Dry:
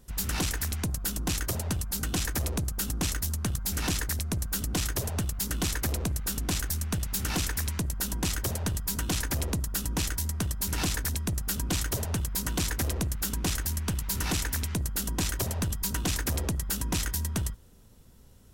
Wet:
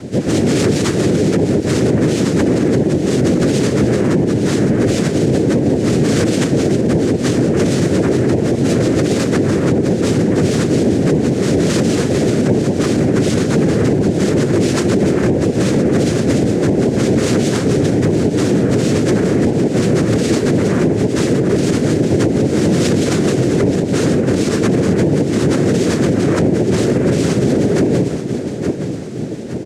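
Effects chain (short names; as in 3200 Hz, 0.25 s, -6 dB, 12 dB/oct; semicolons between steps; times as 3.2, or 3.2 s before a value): CVSD 32 kbps; resonant low shelf 320 Hz +11.5 dB, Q 1.5; comb 7.3 ms, depth 60%; de-hum 128.9 Hz, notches 9; compressor 20:1, threshold -20 dBFS, peak gain reduction 9.5 dB; resonator 190 Hz, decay 0.57 s, harmonics all, mix 60%; robotiser 142 Hz; plain phase-vocoder stretch 1.6×; noise vocoder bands 3; on a send: feedback echo 0.866 s, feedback 45%, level -14 dB; on the sum: maximiser +34.5 dB; gain -5 dB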